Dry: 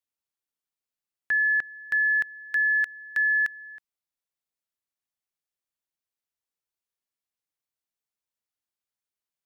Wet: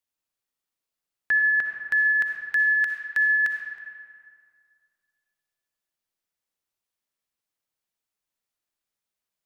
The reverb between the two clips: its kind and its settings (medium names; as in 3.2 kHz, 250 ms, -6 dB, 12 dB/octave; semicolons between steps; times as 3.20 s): algorithmic reverb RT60 2.2 s, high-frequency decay 0.6×, pre-delay 20 ms, DRR 2.5 dB; trim +2.5 dB